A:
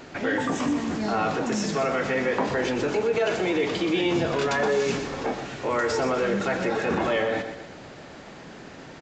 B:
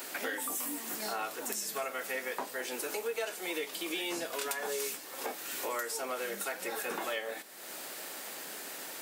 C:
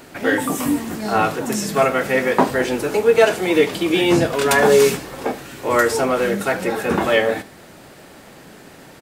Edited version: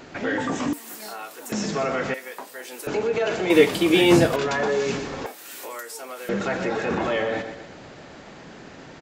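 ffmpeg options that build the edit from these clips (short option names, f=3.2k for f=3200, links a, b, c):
-filter_complex "[1:a]asplit=3[a][b][c];[0:a]asplit=5[d][e][f][g][h];[d]atrim=end=0.732[i];[a]atrim=start=0.728:end=1.522[j];[e]atrim=start=1.518:end=2.142[k];[b]atrim=start=2.138:end=2.872[l];[f]atrim=start=2.868:end=3.502[m];[2:a]atrim=start=3.498:end=4.362[n];[g]atrim=start=4.358:end=5.262[o];[c]atrim=start=5.258:end=6.292[p];[h]atrim=start=6.288[q];[i][j]acrossfade=d=0.004:c1=hsin:c2=hsin[r];[r][k]acrossfade=d=0.004:c1=hsin:c2=hsin[s];[s][l]acrossfade=d=0.004:c1=hsin:c2=hsin[t];[t][m]acrossfade=d=0.004:c1=hsin:c2=hsin[u];[u][n]acrossfade=d=0.004:c1=hsin:c2=hsin[v];[v][o]acrossfade=d=0.004:c1=hsin:c2=hsin[w];[w][p]acrossfade=d=0.004:c1=hsin:c2=hsin[x];[x][q]acrossfade=d=0.004:c1=hsin:c2=hsin"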